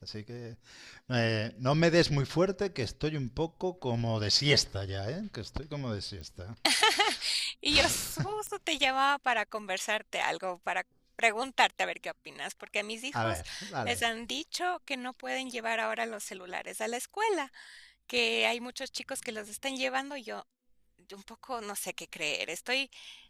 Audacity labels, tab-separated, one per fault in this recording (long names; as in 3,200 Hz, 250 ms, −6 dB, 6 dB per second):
6.210000	6.210000	click −31 dBFS
8.470000	8.470000	click −22 dBFS